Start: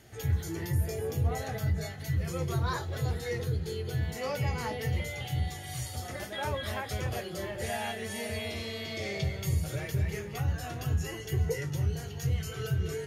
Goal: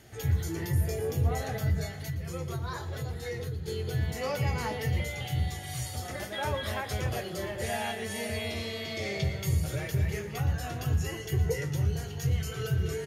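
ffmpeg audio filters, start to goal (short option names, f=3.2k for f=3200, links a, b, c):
-filter_complex "[0:a]asettb=1/sr,asplit=3[a][b][c];[a]atrim=end=1.834[d];[b]atrim=start=1.83:end=3.68,asetpts=PTS-STARTPTS,afade=t=in:d=0.004:c=qsin,afade=t=out:st=1.846:d=0.004:c=qsin,acompressor=threshold=-35dB:ratio=3[e];[c]atrim=start=3.676[f];[d][e]acrossfade=d=0.004:c1=hsin:c2=qsin[g];[g][f]acrossfade=d=0.004:c1=qsin:c2=hsin,asplit=2[h][i];[i]adelay=116.6,volume=-14dB,highshelf=f=4k:g=-2.62[j];[h][j]amix=inputs=2:normalize=0,volume=1.5dB"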